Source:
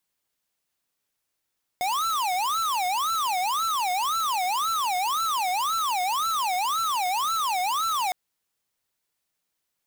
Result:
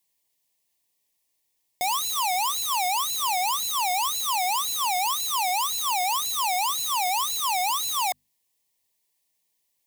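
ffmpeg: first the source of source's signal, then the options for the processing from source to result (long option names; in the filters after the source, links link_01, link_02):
-f lavfi -i "aevalsrc='0.0531*(2*lt(mod((1030.5*t-309.5/(2*PI*1.9)*sin(2*PI*1.9*t)),1),0.5)-1)':duration=6.31:sample_rate=44100"
-af "asuperstop=centerf=1400:order=8:qfactor=2.5,highshelf=frequency=4900:gain=7,bandreject=frequency=50:width_type=h:width=6,bandreject=frequency=100:width_type=h:width=6,bandreject=frequency=150:width_type=h:width=6,bandreject=frequency=200:width_type=h:width=6,bandreject=frequency=250:width_type=h:width=6"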